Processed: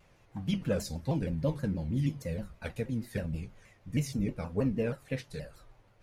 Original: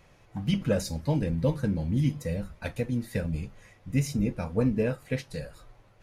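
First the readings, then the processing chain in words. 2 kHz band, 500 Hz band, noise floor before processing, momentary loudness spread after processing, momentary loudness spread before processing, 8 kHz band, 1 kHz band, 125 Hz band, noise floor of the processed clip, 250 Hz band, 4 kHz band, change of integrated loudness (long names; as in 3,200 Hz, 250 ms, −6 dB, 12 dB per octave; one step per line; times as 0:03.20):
−4.5 dB, −4.5 dB, −59 dBFS, 12 LU, 12 LU, −4.5 dB, −4.0 dB, −4.5 dB, −63 dBFS, −4.5 dB, −4.5 dB, −4.5 dB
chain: pitch modulation by a square or saw wave saw down 6.3 Hz, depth 160 cents
level −4.5 dB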